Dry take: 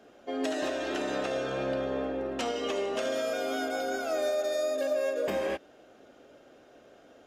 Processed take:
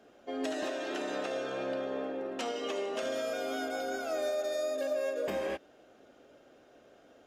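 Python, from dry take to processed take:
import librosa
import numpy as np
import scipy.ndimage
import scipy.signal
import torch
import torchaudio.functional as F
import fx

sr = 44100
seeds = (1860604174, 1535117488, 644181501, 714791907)

y = fx.highpass(x, sr, hz=200.0, slope=12, at=(0.63, 3.03))
y = y * librosa.db_to_amplitude(-3.5)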